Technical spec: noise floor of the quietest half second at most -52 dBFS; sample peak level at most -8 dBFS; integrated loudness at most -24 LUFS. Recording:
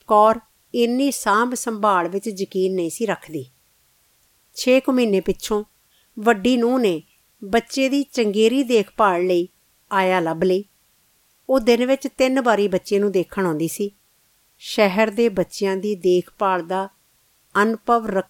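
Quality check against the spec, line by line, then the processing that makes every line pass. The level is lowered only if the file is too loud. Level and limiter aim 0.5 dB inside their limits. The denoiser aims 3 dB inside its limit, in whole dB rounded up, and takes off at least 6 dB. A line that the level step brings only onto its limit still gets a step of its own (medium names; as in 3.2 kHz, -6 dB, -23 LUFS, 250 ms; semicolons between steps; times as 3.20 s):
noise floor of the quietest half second -61 dBFS: pass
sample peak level -3.5 dBFS: fail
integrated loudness -20.0 LUFS: fail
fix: trim -4.5 dB; peak limiter -8.5 dBFS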